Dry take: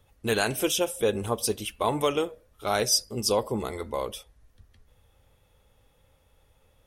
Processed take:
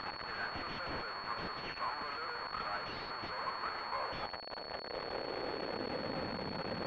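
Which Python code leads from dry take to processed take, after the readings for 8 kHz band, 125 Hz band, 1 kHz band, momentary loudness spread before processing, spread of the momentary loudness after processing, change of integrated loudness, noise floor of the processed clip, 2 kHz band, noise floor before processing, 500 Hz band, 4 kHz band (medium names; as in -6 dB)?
under -35 dB, -12.5 dB, -5.0 dB, 9 LU, 3 LU, -12.5 dB, -45 dBFS, -4.5 dB, -65 dBFS, -14.0 dB, -10.0 dB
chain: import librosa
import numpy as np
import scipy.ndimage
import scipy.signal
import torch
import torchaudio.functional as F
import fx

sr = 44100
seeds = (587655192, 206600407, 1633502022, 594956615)

y = np.sign(x) * np.sqrt(np.mean(np.square(x)))
y = fx.filter_sweep_highpass(y, sr, from_hz=1100.0, to_hz=190.0, start_s=3.75, end_s=6.31, q=1.8)
y = fx.pwm(y, sr, carrier_hz=4400.0)
y = y * 10.0 ** (-6.0 / 20.0)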